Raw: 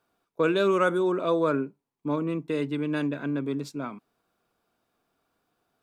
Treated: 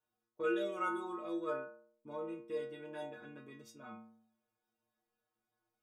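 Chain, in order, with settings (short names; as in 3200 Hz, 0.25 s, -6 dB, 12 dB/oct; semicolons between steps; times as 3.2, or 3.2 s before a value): notch 4100 Hz, Q 5.8; metallic resonator 110 Hz, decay 0.75 s, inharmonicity 0.008; gain +1 dB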